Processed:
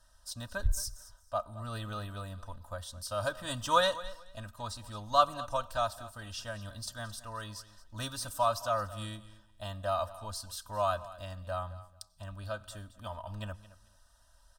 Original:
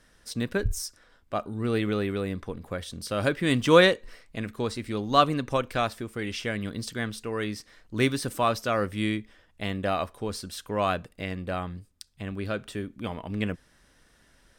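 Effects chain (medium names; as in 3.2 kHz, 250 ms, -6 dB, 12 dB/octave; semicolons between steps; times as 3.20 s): peaking EQ 260 Hz -12 dB 1 oct; static phaser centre 900 Hz, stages 4; comb 3.2 ms, depth 73%; feedback delay 220 ms, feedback 19%, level -17 dB; on a send at -23 dB: reverberation RT60 0.80 s, pre-delay 83 ms; on the sum: trim -3 dB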